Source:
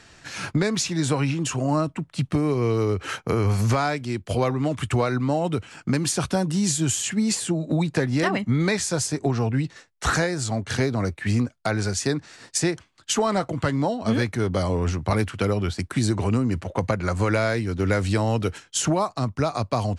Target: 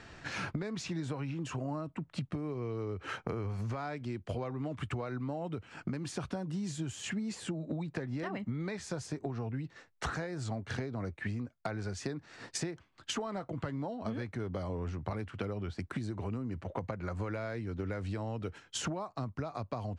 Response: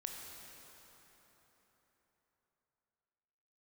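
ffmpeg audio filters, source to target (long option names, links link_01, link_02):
-af "aemphasis=mode=reproduction:type=75fm,acompressor=threshold=-34dB:ratio=10"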